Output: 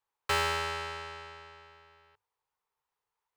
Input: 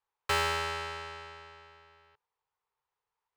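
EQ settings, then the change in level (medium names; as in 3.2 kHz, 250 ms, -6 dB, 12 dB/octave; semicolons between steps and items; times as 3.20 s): hum notches 50/100 Hz; 0.0 dB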